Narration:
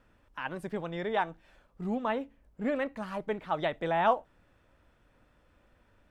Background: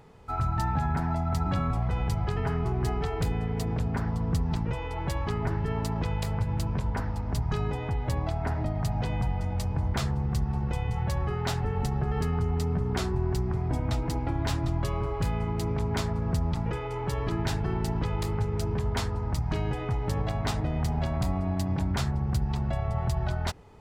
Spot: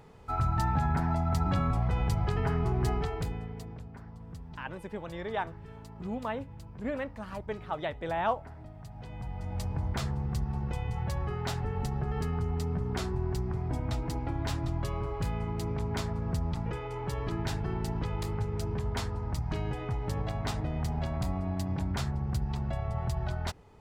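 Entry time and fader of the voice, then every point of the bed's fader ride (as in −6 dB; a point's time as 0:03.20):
4.20 s, −3.5 dB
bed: 0:02.94 −0.5 dB
0:03.93 −17.5 dB
0:08.90 −17.5 dB
0:09.60 −4 dB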